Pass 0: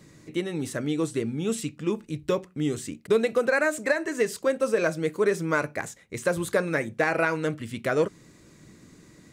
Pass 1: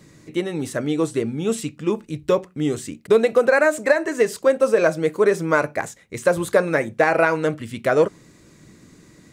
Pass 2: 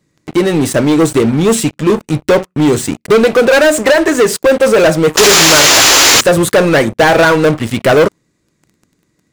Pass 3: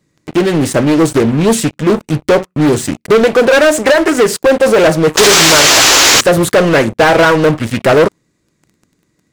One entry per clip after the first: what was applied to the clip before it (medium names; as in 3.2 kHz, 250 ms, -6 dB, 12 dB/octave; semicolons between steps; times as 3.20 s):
dynamic bell 710 Hz, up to +6 dB, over -36 dBFS, Q 0.82; trim +3 dB
painted sound noise, 5.17–6.21 s, 260–7500 Hz -16 dBFS; waveshaping leveller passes 5; trim -2.5 dB
loudspeaker Doppler distortion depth 0.36 ms